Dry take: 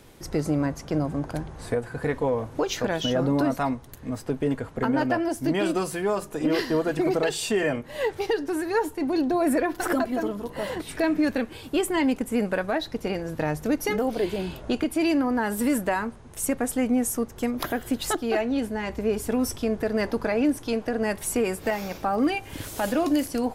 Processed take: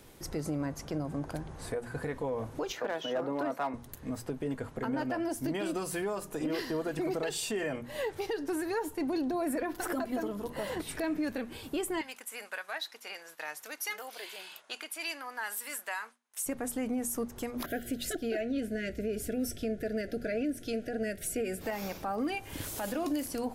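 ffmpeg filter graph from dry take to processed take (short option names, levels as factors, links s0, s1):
-filter_complex "[0:a]asettb=1/sr,asplit=3[s0][s1][s2];[s0]atrim=end=2.724[s3];[s1]atrim=start=2.72:end=3.74,asetpts=PTS-STARTPTS,afade=t=in:d=0.004:c=qsin,afade=t=out:st=1.016:d=0.004:c=qsin,highpass=f=120:w=0.5412,highpass=f=120:w=1.3066,acrossover=split=350 2500:gain=0.178 1 0.251[s4][s5][s6];[s4][s5][s6]amix=inputs=3:normalize=0,volume=10,asoftclip=hard,volume=0.1[s7];[s2]atrim=start=3.736[s8];[s3][s7]acrossfade=d=0.004:c1=hsin:c2=qsin[s9];[s9][s8]acrossfade=d=0.004:c1=qsin:c2=hsin,asettb=1/sr,asplit=3[s10][s11][s12];[s10]atrim=end=12.014[s13];[s11]atrim=start=12.01:end=16.46,asetpts=PTS-STARTPTS,afade=t=in:d=0.004:c=qsin,afade=t=out:st=4.446:d=0.004:c=qsin,highpass=1300,agate=range=0.0224:threshold=0.00316:ratio=3:release=100:detection=peak[s14];[s12]atrim=start=16.456[s15];[s13][s14]acrossfade=d=0.004:c1=hsin:c2=qsin[s16];[s16][s15]acrossfade=d=0.004:c1=qsin:c2=hsin,asettb=1/sr,asplit=3[s17][s18][s19];[s17]atrim=end=17.664[s20];[s18]atrim=start=17.66:end=21.61,asetpts=PTS-STARTPTS,afade=t=in:d=0.004:c=qsin,afade=t=out:st=3.946:d=0.004:c=qsin,asuperstop=centerf=1000:order=20:qfactor=1.6,adynamicequalizer=threshold=0.00708:dfrequency=3300:dqfactor=0.7:tfrequency=3300:tqfactor=0.7:attack=5:release=100:ratio=0.375:range=2.5:mode=cutabove:tftype=highshelf[s21];[s19]atrim=start=21.606[s22];[s20][s21]acrossfade=d=0.004:c1=hsin:c2=qsin[s23];[s23][s22]acrossfade=d=0.004:c1=qsin:c2=hsin,highshelf=f=9200:g=6,bandreject=f=60:t=h:w=6,bandreject=f=120:t=h:w=6,bandreject=f=180:t=h:w=6,bandreject=f=240:t=h:w=6,alimiter=limit=0.0891:level=0:latency=1:release=133,volume=0.631"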